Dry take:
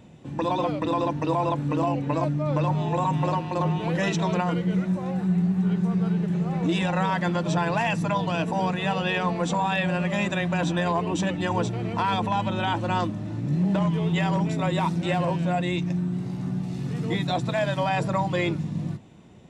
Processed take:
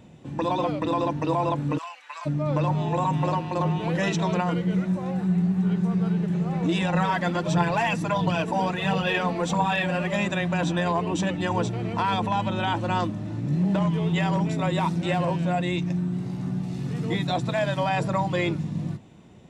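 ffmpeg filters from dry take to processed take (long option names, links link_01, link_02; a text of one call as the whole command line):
ffmpeg -i in.wav -filter_complex "[0:a]asplit=3[link_01][link_02][link_03];[link_01]afade=type=out:start_time=1.77:duration=0.02[link_04];[link_02]highpass=frequency=1200:width=0.5412,highpass=frequency=1200:width=1.3066,afade=type=in:start_time=1.77:duration=0.02,afade=type=out:start_time=2.25:duration=0.02[link_05];[link_03]afade=type=in:start_time=2.25:duration=0.02[link_06];[link_04][link_05][link_06]amix=inputs=3:normalize=0,asettb=1/sr,asplit=3[link_07][link_08][link_09];[link_07]atrim=end=6.944[link_10];[link_08]atrim=start=6.94:end=10.16,asetpts=PTS-STARTPTS,afade=type=in:duration=0.004:curve=qsin,afade=type=out:start_time=3.216:duration=0.004:curve=qsin,aphaser=in_gain=1:out_gain=1:delay=4.3:decay=0.44:speed=1.5:type=triangular[link_11];[link_09]atrim=start=10.156[link_12];[link_10][link_11]acrossfade=duration=0.004:curve1=hsin:curve2=qsin[link_13];[link_13][link_12]acrossfade=duration=0.004:curve1=qsin:curve2=hsin" out.wav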